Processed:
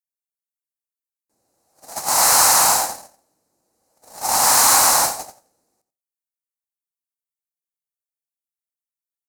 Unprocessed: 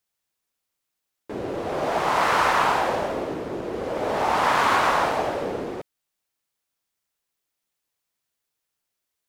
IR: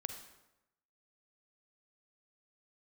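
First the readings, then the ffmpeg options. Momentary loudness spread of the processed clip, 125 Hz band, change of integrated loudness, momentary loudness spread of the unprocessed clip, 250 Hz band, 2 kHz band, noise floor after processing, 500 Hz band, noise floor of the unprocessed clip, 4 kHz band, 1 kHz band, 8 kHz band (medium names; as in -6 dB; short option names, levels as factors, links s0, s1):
16 LU, -5.5 dB, +9.5 dB, 12 LU, -8.5 dB, -0.5 dB, under -85 dBFS, -6.0 dB, -82 dBFS, +10.5 dB, +1.0 dB, +25.0 dB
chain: -filter_complex "[0:a]acrossover=split=830[s0][s1];[s0]volume=16.8,asoftclip=hard,volume=0.0596[s2];[s2][s1]amix=inputs=2:normalize=0,agate=range=0.00891:threshold=0.0794:ratio=16:detection=peak,equalizer=f=400:t=o:w=0.33:g=-9,equalizer=f=800:t=o:w=0.33:g=7,equalizer=f=4000:t=o:w=0.33:g=10,asplit=2[s3][s4];[s4]adelay=87.46,volume=0.251,highshelf=f=4000:g=-1.97[s5];[s3][s5]amix=inputs=2:normalize=0,aexciter=amount=14.9:drive=8.5:freq=5500,asplit=2[s6][s7];[1:a]atrim=start_sample=2205,afade=t=out:st=0.24:d=0.01,atrim=end_sample=11025[s8];[s7][s8]afir=irnorm=-1:irlink=0,volume=0.335[s9];[s6][s9]amix=inputs=2:normalize=0,volume=0.75"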